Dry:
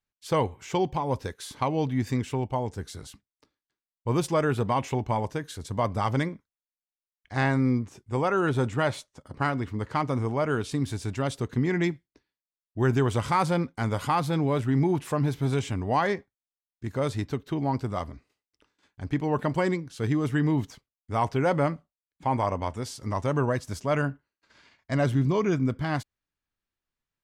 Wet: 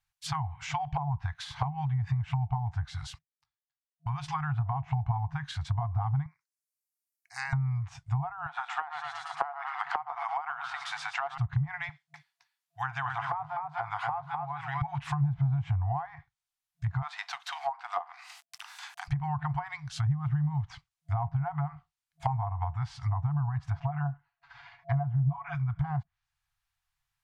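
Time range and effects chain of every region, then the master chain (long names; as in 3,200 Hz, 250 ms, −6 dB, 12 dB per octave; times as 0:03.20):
0:02.99–0:04.28: noise gate −56 dBFS, range −18 dB + downward compressor 2.5 to 1, threshold −36 dBFS
0:06.26–0:07.53: Butterworth band-reject 3,300 Hz, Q 1.9 + first difference
0:08.46–0:11.38: Butterworth high-pass 320 Hz 48 dB per octave + echo with shifted repeats 112 ms, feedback 51%, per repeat −31 Hz, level −11.5 dB + multiband upward and downward compressor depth 70%
0:11.89–0:14.82: de-essing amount 100% + high-pass filter 410 Hz + single-tap delay 250 ms −4.5 dB
0:17.02–0:19.08: mu-law and A-law mismatch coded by mu + Butterworth high-pass 250 Hz 96 dB per octave + upward compression, threshold −38 dBFS
0:23.70–0:25.55: low-pass filter 2,700 Hz + parametric band 580 Hz +10 dB 0.97 octaves + comb filter 7.1 ms, depth 69%
whole clip: downward compressor 6 to 1, threshold −27 dBFS; brick-wall band-stop 160–680 Hz; treble cut that deepens with the level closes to 580 Hz, closed at −30.5 dBFS; level +6 dB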